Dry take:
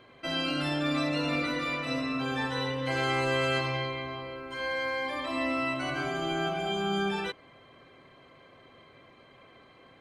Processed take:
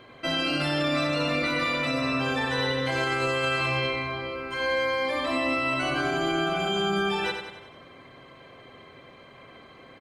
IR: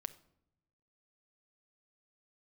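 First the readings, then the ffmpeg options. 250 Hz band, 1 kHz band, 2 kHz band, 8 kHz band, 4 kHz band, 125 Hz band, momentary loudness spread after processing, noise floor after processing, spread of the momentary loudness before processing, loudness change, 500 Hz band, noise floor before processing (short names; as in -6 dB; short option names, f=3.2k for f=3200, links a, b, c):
+2.5 dB, +4.0 dB, +5.0 dB, +4.5 dB, +4.5 dB, +2.5 dB, 5 LU, -50 dBFS, 7 LU, +4.0 dB, +4.5 dB, -57 dBFS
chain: -filter_complex "[0:a]asplit=2[a][b];[b]aecho=0:1:93|186|279|372|465|558:0.447|0.228|0.116|0.0593|0.0302|0.0154[c];[a][c]amix=inputs=2:normalize=0,alimiter=limit=-23dB:level=0:latency=1:release=28,volume=5.5dB"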